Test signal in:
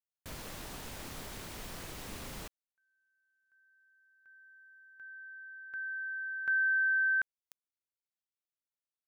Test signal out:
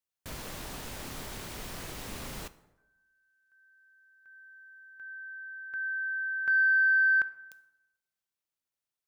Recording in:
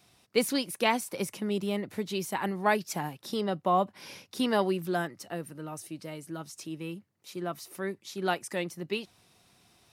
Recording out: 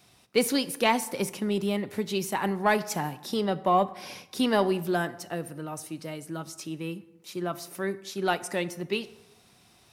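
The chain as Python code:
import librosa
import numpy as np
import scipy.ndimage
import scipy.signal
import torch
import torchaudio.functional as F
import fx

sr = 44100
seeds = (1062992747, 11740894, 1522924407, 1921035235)

p1 = 10.0 ** (-21.5 / 20.0) * np.tanh(x / 10.0 ** (-21.5 / 20.0))
p2 = x + (p1 * 10.0 ** (-6.5 / 20.0))
y = fx.rev_plate(p2, sr, seeds[0], rt60_s=1.0, hf_ratio=0.6, predelay_ms=0, drr_db=14.0)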